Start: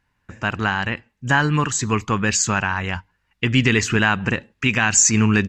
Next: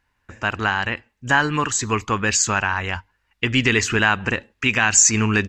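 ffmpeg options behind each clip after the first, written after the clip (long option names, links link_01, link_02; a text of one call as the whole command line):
ffmpeg -i in.wav -af "equalizer=frequency=160:width_type=o:width=1.1:gain=-8.5,volume=1dB" out.wav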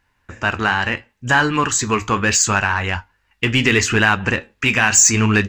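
ffmpeg -i in.wav -filter_complex "[0:a]asplit=2[link_01][link_02];[link_02]asoftclip=type=tanh:threshold=-18dB,volume=-4dB[link_03];[link_01][link_03]amix=inputs=2:normalize=0,flanger=delay=8.5:depth=6.3:regen=-64:speed=0.73:shape=triangular,volume=4.5dB" out.wav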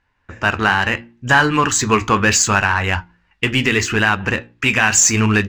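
ffmpeg -i in.wav -af "adynamicsmooth=sensitivity=3:basefreq=5500,bandreject=frequency=58.48:width_type=h:width=4,bandreject=frequency=116.96:width_type=h:width=4,bandreject=frequency=175.44:width_type=h:width=4,bandreject=frequency=233.92:width_type=h:width=4,bandreject=frequency=292.4:width_type=h:width=4,bandreject=frequency=350.88:width_type=h:width=4,dynaudnorm=framelen=130:gausssize=5:maxgain=11.5dB,volume=-1dB" out.wav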